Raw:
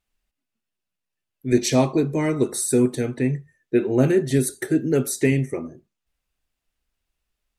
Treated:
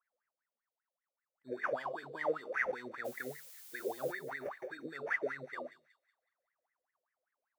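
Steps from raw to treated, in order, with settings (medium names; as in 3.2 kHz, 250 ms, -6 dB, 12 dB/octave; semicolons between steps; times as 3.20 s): flange 1.1 Hz, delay 5.4 ms, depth 9.1 ms, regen +73%; peak limiter -22 dBFS, peak gain reduction 11.5 dB; sample-and-hold 11×; wah-wah 5.1 Hz 500–2000 Hz, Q 20; 3.04–4.11 s: added noise blue -69 dBFS; on a send: feedback echo behind a high-pass 185 ms, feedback 38%, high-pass 3.1 kHz, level -8.5 dB; on the sum: trim +14.5 dB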